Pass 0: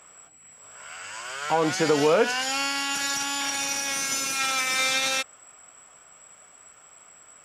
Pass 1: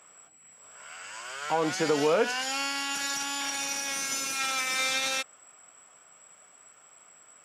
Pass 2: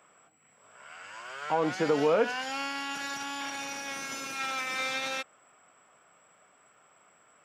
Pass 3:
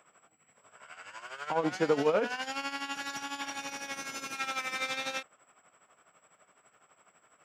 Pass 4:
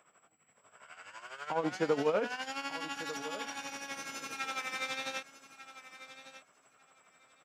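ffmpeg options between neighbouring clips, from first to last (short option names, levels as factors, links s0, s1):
-af "highpass=130,volume=0.631"
-af "equalizer=f=9800:w=0.38:g=-13"
-af "tremolo=f=12:d=0.7,volume=1.12"
-af "aecho=1:1:1196|2392:0.2|0.0319,volume=0.708"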